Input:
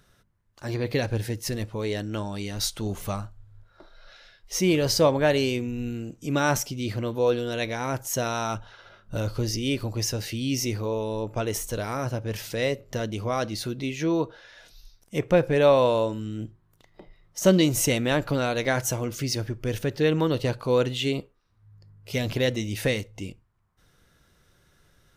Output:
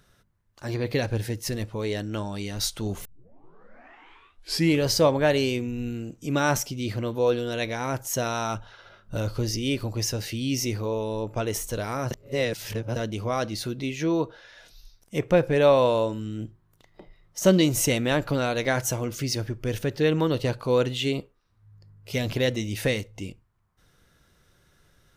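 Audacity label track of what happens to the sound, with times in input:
3.050000	3.050000	tape start 1.78 s
12.110000	12.960000	reverse

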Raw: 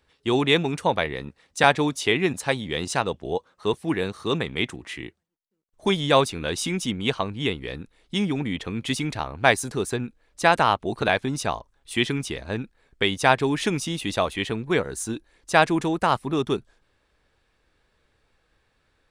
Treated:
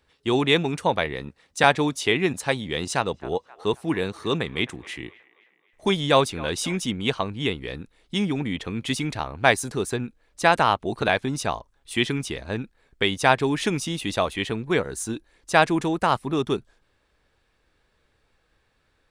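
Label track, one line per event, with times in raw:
2.810000	6.800000	delay with a band-pass on its return 265 ms, feedback 47%, band-pass 1,200 Hz, level −17.5 dB

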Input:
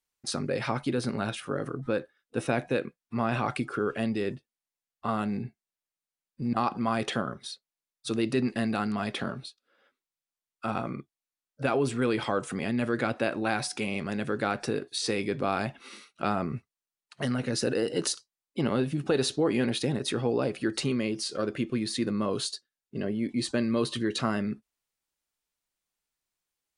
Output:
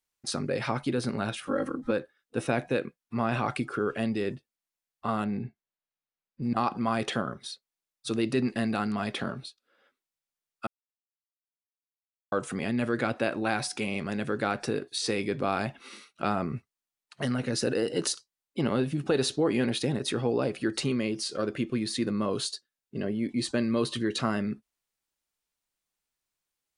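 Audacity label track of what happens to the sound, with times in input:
1.470000	1.910000	comb filter 3.7 ms, depth 96%
5.240000	6.430000	high-frequency loss of the air 160 metres
10.670000	12.320000	silence

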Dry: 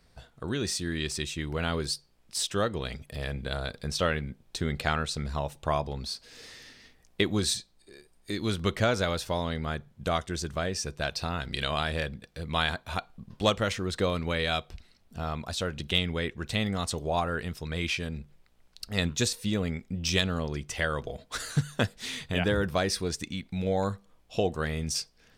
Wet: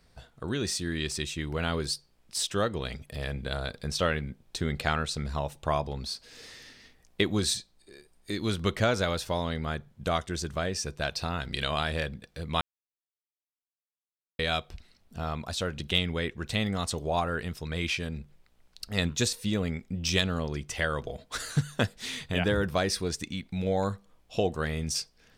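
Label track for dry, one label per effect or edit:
12.610000	14.390000	silence

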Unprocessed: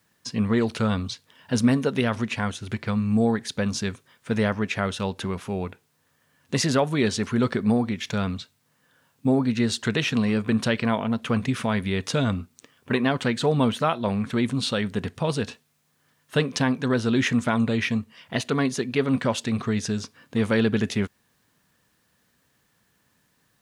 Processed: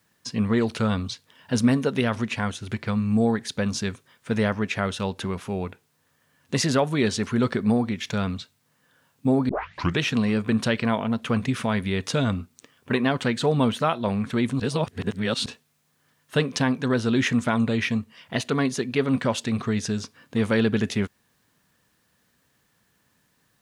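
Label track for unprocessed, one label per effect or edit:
9.490000	9.490000	tape start 0.51 s
14.600000	15.460000	reverse

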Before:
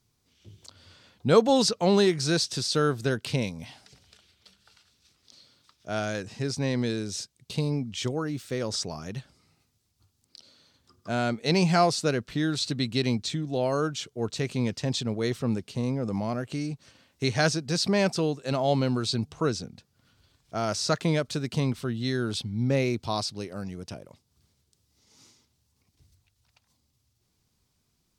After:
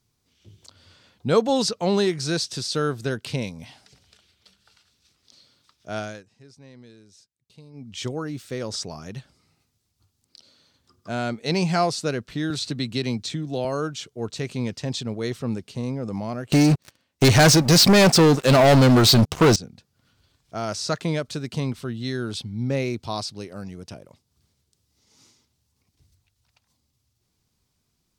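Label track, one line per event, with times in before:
5.980000	8.000000	duck −20 dB, fades 0.27 s
12.500000	13.650000	multiband upward and downward compressor depth 40%
16.520000	19.560000	leveller curve on the samples passes 5

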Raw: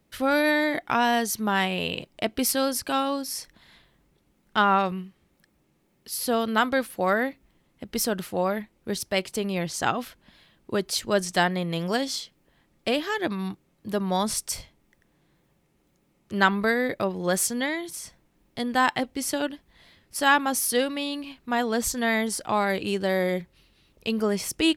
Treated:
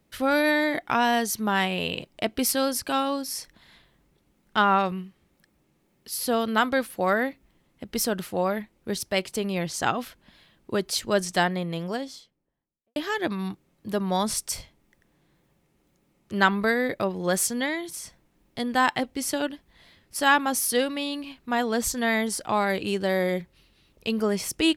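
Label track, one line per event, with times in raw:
11.220000	12.960000	fade out and dull

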